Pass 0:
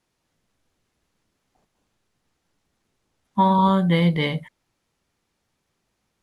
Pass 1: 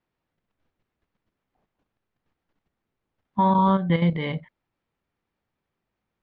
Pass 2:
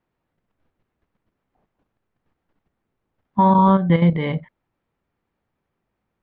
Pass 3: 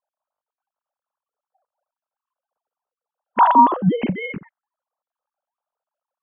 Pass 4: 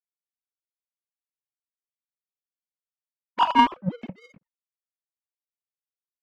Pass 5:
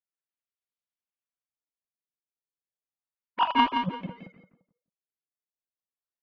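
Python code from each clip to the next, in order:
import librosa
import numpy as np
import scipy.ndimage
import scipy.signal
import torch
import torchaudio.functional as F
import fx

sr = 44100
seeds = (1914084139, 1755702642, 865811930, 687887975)

y1 = fx.level_steps(x, sr, step_db=9)
y1 = scipy.signal.sosfilt(scipy.signal.butter(2, 2700.0, 'lowpass', fs=sr, output='sos'), y1)
y2 = fx.high_shelf(y1, sr, hz=3300.0, db=-11.5)
y2 = y2 * librosa.db_to_amplitude(5.5)
y3 = fx.sine_speech(y2, sr)
y3 = fx.env_phaser(y3, sr, low_hz=360.0, high_hz=2300.0, full_db=-14.5)
y3 = y3 * librosa.db_to_amplitude(1.5)
y4 = fx.power_curve(y3, sr, exponent=2.0)
y4 = y4 * librosa.db_to_amplitude(-1.0)
y5 = fx.echo_feedback(y4, sr, ms=172, feedback_pct=26, wet_db=-6.5)
y5 = fx.filter_lfo_lowpass(y5, sr, shape='sine', hz=0.33, low_hz=460.0, high_hz=3800.0, q=1.3)
y5 = y5 * librosa.db_to_amplitude(-4.5)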